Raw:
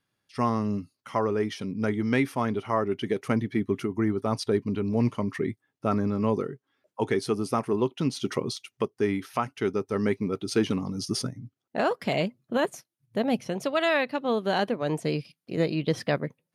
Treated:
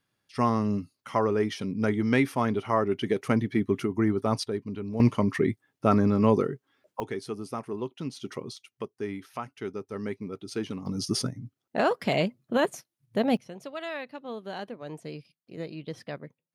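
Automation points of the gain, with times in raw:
+1 dB
from 4.45 s -6.5 dB
from 5 s +4 dB
from 7 s -8 dB
from 10.86 s +1 dB
from 13.37 s -11.5 dB

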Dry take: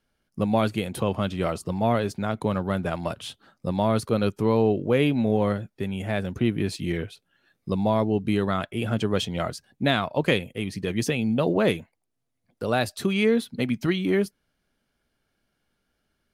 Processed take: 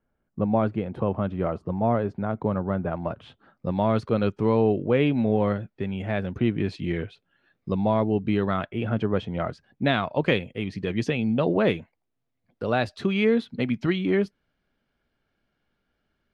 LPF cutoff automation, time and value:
3 s 1300 Hz
3.91 s 3000 Hz
8.56 s 3000 Hz
9.26 s 1600 Hz
9.92 s 3500 Hz

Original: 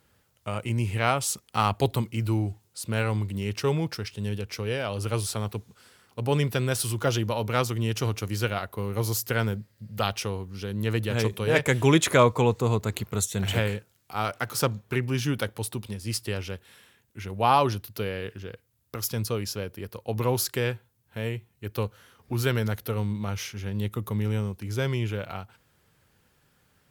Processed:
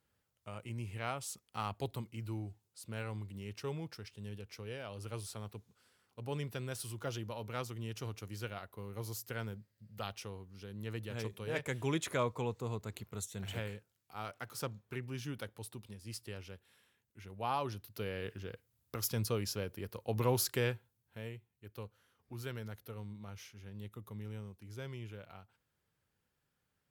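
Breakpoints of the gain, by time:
17.62 s -15 dB
18.31 s -6 dB
20.64 s -6 dB
21.52 s -17.5 dB

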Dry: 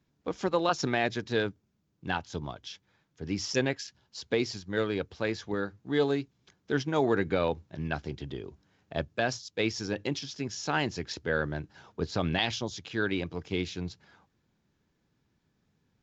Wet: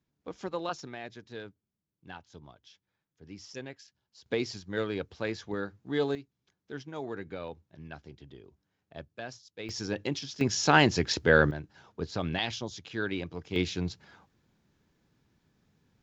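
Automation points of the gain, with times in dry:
-7.5 dB
from 0.8 s -14 dB
from 4.26 s -2.5 dB
from 6.15 s -12 dB
from 9.69 s -0.5 dB
from 10.41 s +8 dB
from 11.51 s -3 dB
from 13.56 s +3.5 dB

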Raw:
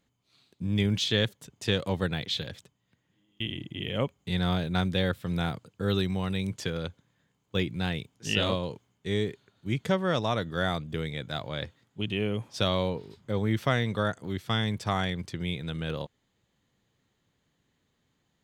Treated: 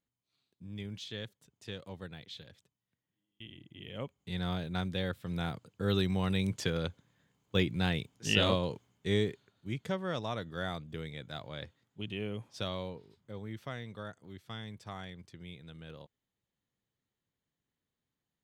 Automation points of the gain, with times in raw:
3.55 s -16 dB
4.41 s -7.5 dB
5.15 s -7.5 dB
6.3 s -0.5 dB
9.14 s -0.5 dB
9.79 s -8.5 dB
12.38 s -8.5 dB
13.49 s -15.5 dB

